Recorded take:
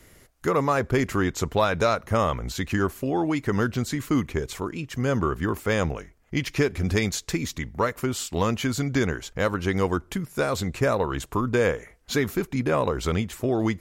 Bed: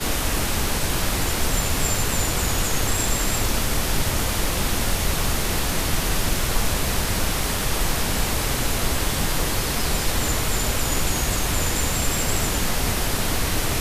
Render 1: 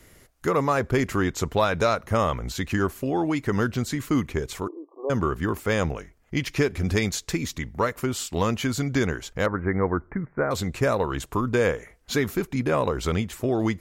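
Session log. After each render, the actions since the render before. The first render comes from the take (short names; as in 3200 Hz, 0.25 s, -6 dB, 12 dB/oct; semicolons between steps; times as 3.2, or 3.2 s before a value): 4.68–5.1 brick-wall FIR band-pass 290–1200 Hz; 9.46–10.51 steep low-pass 2100 Hz 72 dB/oct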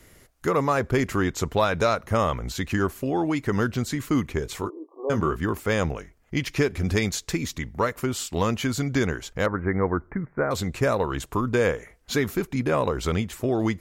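4.44–5.38 doubler 19 ms -7.5 dB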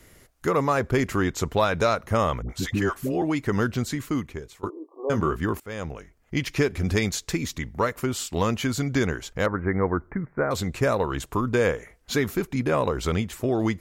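2.42–3.22 dispersion highs, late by 76 ms, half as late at 590 Hz; 3.86–4.63 fade out, to -21 dB; 5.6–6.35 fade in, from -17.5 dB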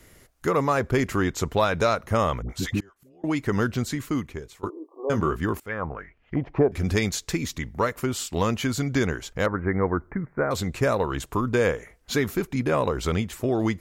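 2.8–3.24 flipped gate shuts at -29 dBFS, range -29 dB; 5.68–6.72 envelope low-pass 730–3500 Hz down, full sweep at -25.5 dBFS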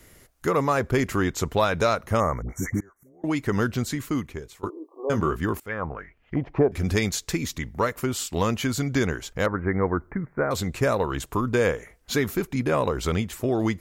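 2.2–3.22 spectral delete 2300–5500 Hz; high shelf 9800 Hz +4 dB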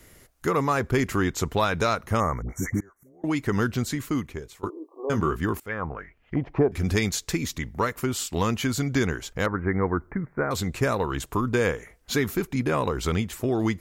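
dynamic EQ 580 Hz, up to -5 dB, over -37 dBFS, Q 2.9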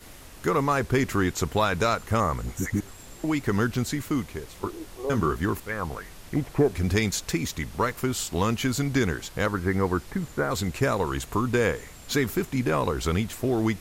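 add bed -23.5 dB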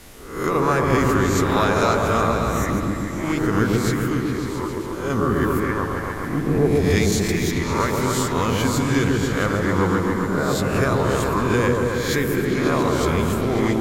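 spectral swells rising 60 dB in 0.64 s; repeats that get brighter 0.136 s, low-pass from 750 Hz, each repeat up 1 oct, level 0 dB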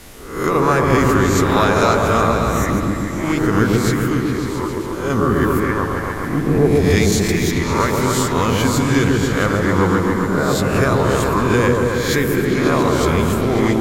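gain +4 dB; limiter -1 dBFS, peak gain reduction 1 dB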